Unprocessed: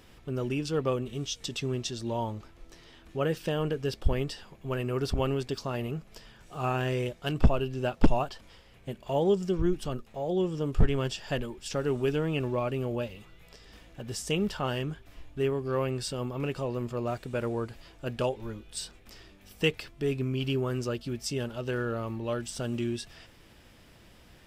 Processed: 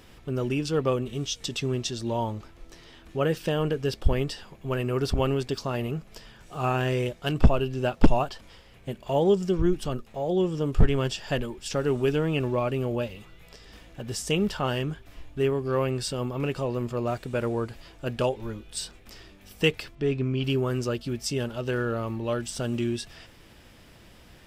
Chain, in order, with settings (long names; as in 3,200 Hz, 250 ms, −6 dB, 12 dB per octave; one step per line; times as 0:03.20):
0:19.95–0:20.44: high-frequency loss of the air 100 metres
level +3.5 dB